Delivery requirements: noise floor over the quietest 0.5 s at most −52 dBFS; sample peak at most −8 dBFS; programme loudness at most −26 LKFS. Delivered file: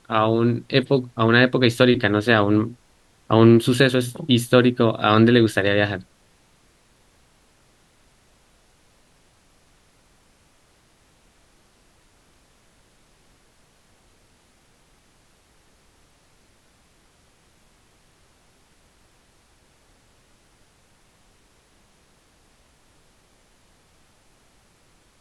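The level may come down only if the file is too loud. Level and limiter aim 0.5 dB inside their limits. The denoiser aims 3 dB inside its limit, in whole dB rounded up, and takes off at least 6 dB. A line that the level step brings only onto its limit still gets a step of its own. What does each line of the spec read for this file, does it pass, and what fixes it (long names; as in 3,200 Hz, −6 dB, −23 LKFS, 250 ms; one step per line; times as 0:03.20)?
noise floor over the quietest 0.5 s −59 dBFS: in spec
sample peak −2.0 dBFS: out of spec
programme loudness −18.0 LKFS: out of spec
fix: level −8.5 dB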